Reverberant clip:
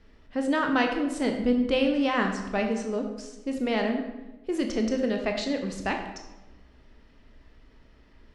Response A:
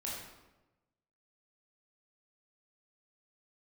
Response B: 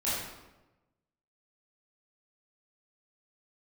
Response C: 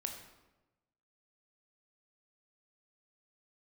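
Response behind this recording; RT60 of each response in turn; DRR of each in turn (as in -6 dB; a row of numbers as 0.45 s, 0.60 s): C; 1.1 s, 1.1 s, 1.1 s; -5.5 dB, -10.5 dB, 3.5 dB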